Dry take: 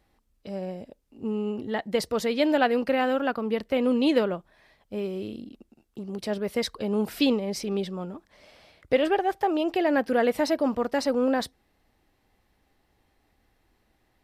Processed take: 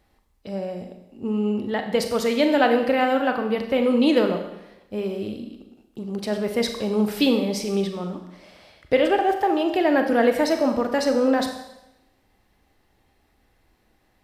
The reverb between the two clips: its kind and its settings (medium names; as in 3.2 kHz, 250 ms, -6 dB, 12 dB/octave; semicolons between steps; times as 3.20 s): Schroeder reverb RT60 0.91 s, combs from 30 ms, DRR 5.5 dB; trim +3 dB